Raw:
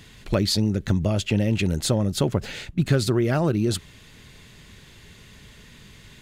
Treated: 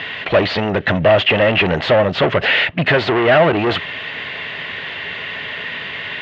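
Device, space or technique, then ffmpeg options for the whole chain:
overdrive pedal into a guitar cabinet: -filter_complex "[0:a]asplit=2[a][b];[b]highpass=f=720:p=1,volume=30dB,asoftclip=type=tanh:threshold=-7dB[c];[a][c]amix=inputs=2:normalize=0,lowpass=f=1.7k:p=1,volume=-6dB,highpass=100,equalizer=f=130:t=q:w=4:g=-5,equalizer=f=210:t=q:w=4:g=-9,equalizer=f=340:t=q:w=4:g=-6,equalizer=f=660:t=q:w=4:g=5,equalizer=f=1.9k:t=q:w=4:g=7,equalizer=f=2.9k:t=q:w=4:g=7,lowpass=f=3.7k:w=0.5412,lowpass=f=3.7k:w=1.3066,volume=2.5dB"

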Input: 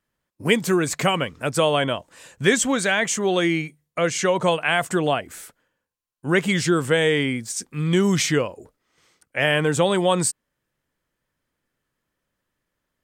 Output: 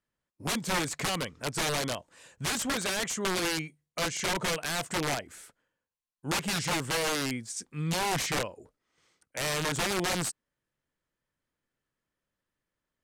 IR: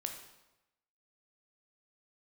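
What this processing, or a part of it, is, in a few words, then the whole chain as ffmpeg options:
overflowing digital effects unit: -af "aeval=exprs='(mod(5.96*val(0)+1,2)-1)/5.96':c=same,lowpass=11k,volume=-8dB"

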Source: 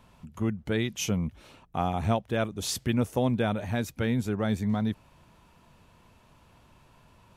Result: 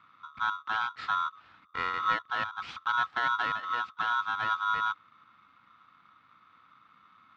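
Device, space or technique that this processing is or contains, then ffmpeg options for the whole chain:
ring modulator pedal into a guitar cabinet: -af "aeval=exprs='val(0)*sgn(sin(2*PI*1200*n/s))':c=same,highpass=76,equalizer=f=100:t=q:w=4:g=5,equalizer=f=400:t=q:w=4:g=-8,equalizer=f=590:t=q:w=4:g=-10,equalizer=f=1.3k:t=q:w=4:g=9,lowpass=f=3.5k:w=0.5412,lowpass=f=3.5k:w=1.3066,volume=-6dB"

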